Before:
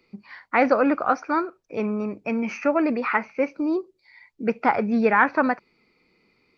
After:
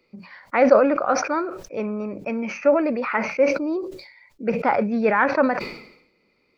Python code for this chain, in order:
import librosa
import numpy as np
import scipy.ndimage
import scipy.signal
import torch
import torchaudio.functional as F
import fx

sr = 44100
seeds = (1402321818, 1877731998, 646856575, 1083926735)

y = fx.peak_eq(x, sr, hz=560.0, db=9.5, octaves=0.28)
y = fx.hum_notches(y, sr, base_hz=60, count=3)
y = fx.sustainer(y, sr, db_per_s=75.0)
y = y * 10.0 ** (-2.0 / 20.0)